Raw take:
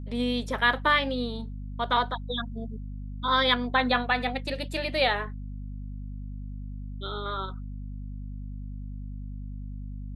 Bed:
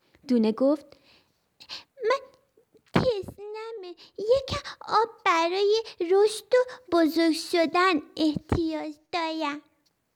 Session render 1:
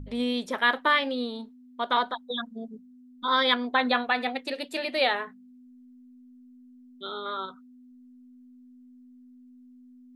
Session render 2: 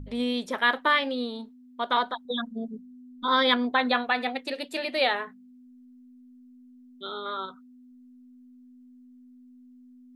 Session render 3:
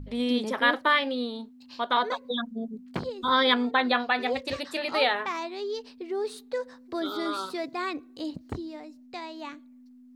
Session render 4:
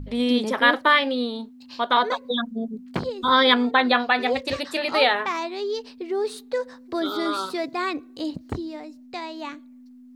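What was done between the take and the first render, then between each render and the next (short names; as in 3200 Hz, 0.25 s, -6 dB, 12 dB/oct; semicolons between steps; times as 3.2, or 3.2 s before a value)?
de-hum 50 Hz, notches 4
2.25–3.72 low shelf 420 Hz +6 dB
add bed -10 dB
gain +5 dB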